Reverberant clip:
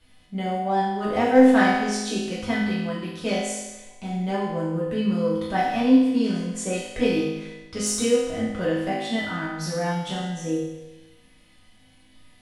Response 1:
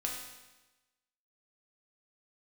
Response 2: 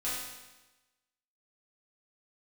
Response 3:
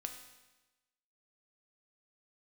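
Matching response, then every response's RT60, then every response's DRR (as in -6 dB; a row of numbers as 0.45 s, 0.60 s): 2; 1.1 s, 1.1 s, 1.1 s; -2.0 dB, -10.5 dB, 4.0 dB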